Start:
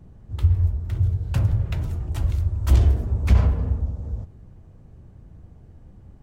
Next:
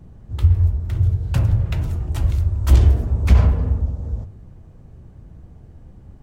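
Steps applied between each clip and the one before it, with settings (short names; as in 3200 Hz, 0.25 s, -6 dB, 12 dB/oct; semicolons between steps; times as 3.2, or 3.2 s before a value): de-hum 98.07 Hz, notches 30; gain +4 dB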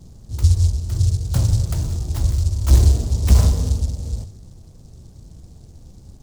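noise-modulated delay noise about 5800 Hz, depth 0.13 ms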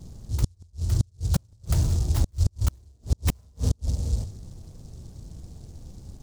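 flipped gate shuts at -10 dBFS, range -39 dB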